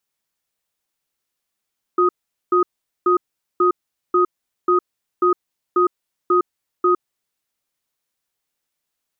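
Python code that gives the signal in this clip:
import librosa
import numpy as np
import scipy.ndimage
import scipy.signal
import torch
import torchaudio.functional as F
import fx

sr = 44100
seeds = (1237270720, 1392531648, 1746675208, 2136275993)

y = fx.cadence(sr, length_s=5.06, low_hz=359.0, high_hz=1250.0, on_s=0.11, off_s=0.43, level_db=-15.0)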